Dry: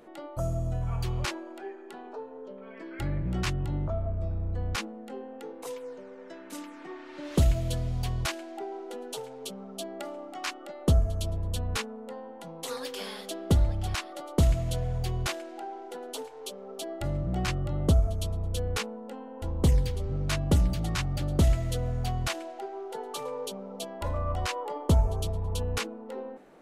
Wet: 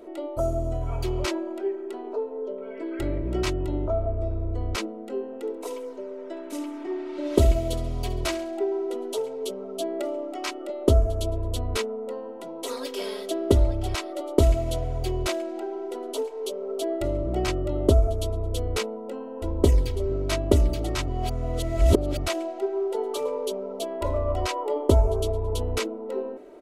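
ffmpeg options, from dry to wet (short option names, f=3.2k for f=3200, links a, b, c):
-filter_complex "[0:a]asplit=3[a][b][c];[a]afade=t=out:st=5.43:d=0.02[d];[b]aecho=1:1:68|136|204|272:0.2|0.0858|0.0369|0.0159,afade=t=in:st=5.43:d=0.02,afade=t=out:st=8.63:d=0.02[e];[c]afade=t=in:st=8.63:d=0.02[f];[d][e][f]amix=inputs=3:normalize=0,asplit=3[g][h][i];[g]atrim=end=21.082[j];[h]atrim=start=21.078:end=22.262,asetpts=PTS-STARTPTS,areverse[k];[i]atrim=start=22.258[l];[j][k]acrossfade=d=0.004:c1=hsin:c2=hsin[m];[m][l]acrossfade=d=0.004:c1=hsin:c2=hsin,equalizer=f=450:w=2.1:g=14.5,bandreject=f=1.7k:w=12,aecho=1:1:3.1:0.73"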